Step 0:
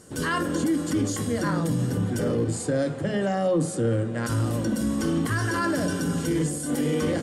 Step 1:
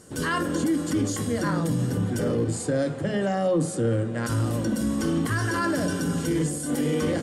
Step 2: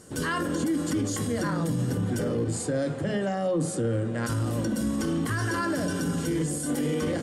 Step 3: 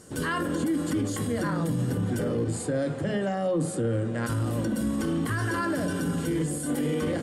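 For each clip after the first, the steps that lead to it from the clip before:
no audible change
peak limiter -19.5 dBFS, peak gain reduction 4.5 dB
dynamic bell 5.9 kHz, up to -7 dB, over -53 dBFS, Q 1.9

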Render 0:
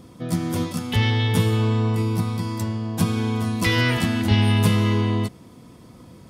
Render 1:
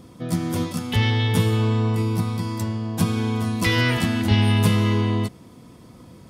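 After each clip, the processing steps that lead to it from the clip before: no audible change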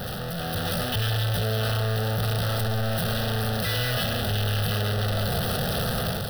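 one-bit comparator; level rider gain up to 6 dB; static phaser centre 1.5 kHz, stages 8; trim -6.5 dB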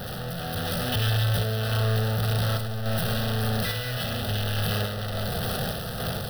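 random-step tremolo; reverberation RT60 0.35 s, pre-delay 50 ms, DRR 10.5 dB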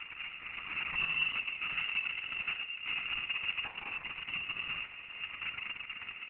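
delay 669 ms -19 dB; frequency inversion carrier 2.8 kHz; trim -9 dB; Opus 6 kbps 48 kHz

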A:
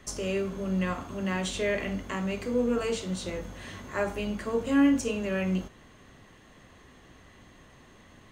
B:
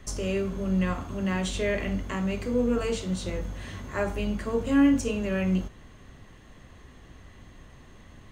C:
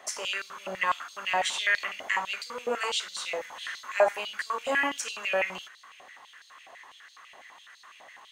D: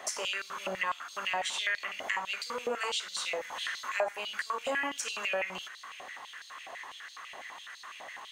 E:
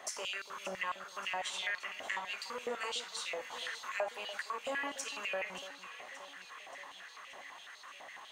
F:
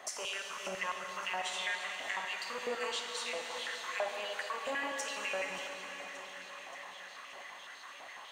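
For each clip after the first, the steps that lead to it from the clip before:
bass shelf 110 Hz +12 dB
step-sequenced high-pass 12 Hz 710–4200 Hz; trim +2.5 dB
compression 2.5:1, threshold -40 dBFS, peak gain reduction 15.5 dB; trim +5.5 dB
echo whose repeats swap between lows and highs 289 ms, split 1.2 kHz, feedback 79%, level -13 dB; trim -5.5 dB
reverberation RT60 4.5 s, pre-delay 38 ms, DRR 3 dB

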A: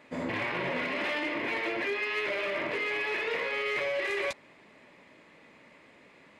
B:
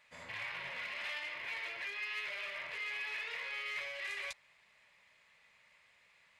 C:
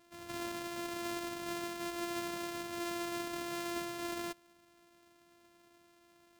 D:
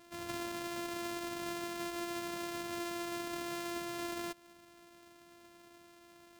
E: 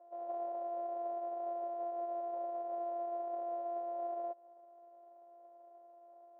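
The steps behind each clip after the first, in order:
amplifier tone stack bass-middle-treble 10-0-10; trim -3.5 dB
sorted samples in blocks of 128 samples; trim +2 dB
compression, threshold -43 dBFS, peak gain reduction 8.5 dB; trim +6 dB
comb filter that takes the minimum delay 5.5 ms; Butterworth band-pass 630 Hz, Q 2.6; trim +9.5 dB

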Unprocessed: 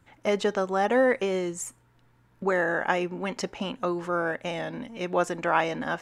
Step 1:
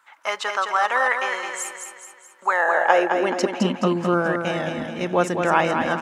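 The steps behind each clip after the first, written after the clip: high-pass sweep 1.1 kHz -> 94 Hz, 2.42–4.20 s; on a send: feedback delay 213 ms, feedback 48%, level -6 dB; on the sum: trim +4.5 dB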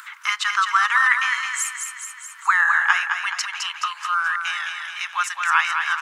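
steep high-pass 1.1 kHz 48 dB/octave; in parallel at +0.5 dB: upward compressor, threshold -28 dBFS; on the sum: trim -1 dB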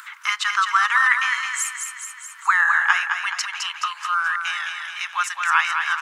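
no audible change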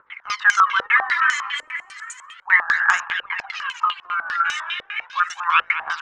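phaser 0.34 Hz, delay 3.7 ms, feedback 67%; step-sequenced low-pass 10 Hz 510–6900 Hz; trim -4.5 dB

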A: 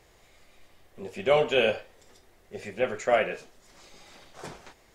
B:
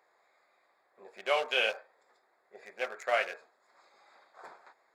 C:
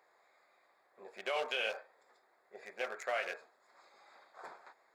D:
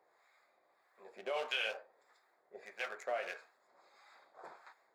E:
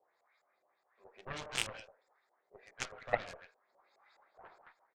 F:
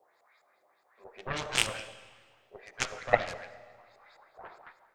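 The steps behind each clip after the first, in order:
local Wiener filter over 15 samples; high-pass 890 Hz 12 dB/octave
peak limiter -25 dBFS, peak gain reduction 11.5 dB
flange 0.44 Hz, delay 5.4 ms, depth 7.6 ms, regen -74%; harmonic tremolo 1.6 Hz, depth 70%, crossover 870 Hz; trim +5.5 dB
echo from a far wall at 23 m, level -10 dB; LFO low-pass saw up 4.8 Hz 530–8000 Hz; Chebyshev shaper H 3 -8 dB, 6 -24 dB, 7 -43 dB, 8 -44 dB, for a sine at -19.5 dBFS; trim +5 dB
algorithmic reverb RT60 1.7 s, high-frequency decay 0.9×, pre-delay 25 ms, DRR 14.5 dB; trim +8.5 dB

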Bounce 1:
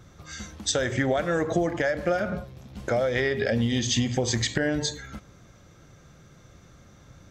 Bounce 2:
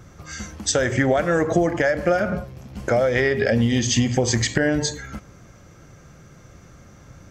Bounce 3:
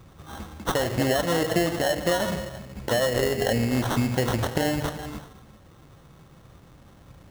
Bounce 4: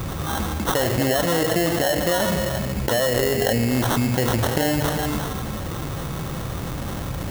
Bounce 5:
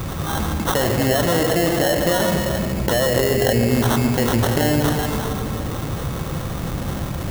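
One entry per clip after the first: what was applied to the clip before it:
peaking EQ 3.7 kHz -8.5 dB 0.3 oct; trim +5.5 dB
gated-style reverb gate 420 ms flat, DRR 10.5 dB; sample-rate reducer 2.4 kHz, jitter 0%; trim -4.5 dB
treble shelf 9.5 kHz +7.5 dB; level flattener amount 70%
filtered feedback delay 141 ms, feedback 83%, low-pass 860 Hz, level -7 dB; trim +1.5 dB

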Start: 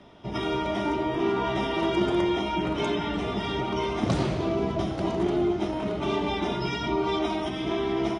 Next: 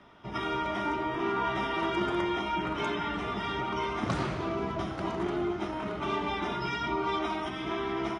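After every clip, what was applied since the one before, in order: FFT filter 650 Hz 0 dB, 1.3 kHz +10 dB, 3.6 kHz +1 dB; trim -6.5 dB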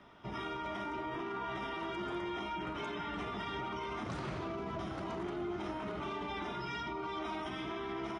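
peak limiter -29 dBFS, peak gain reduction 10.5 dB; trim -2.5 dB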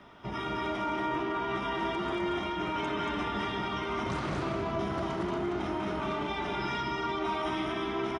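loudspeakers at several distances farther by 67 m -10 dB, 79 m -3 dB; trim +5 dB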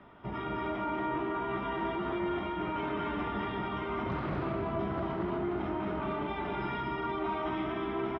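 distance through air 400 m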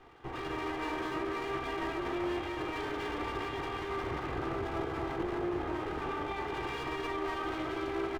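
comb filter that takes the minimum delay 2.5 ms

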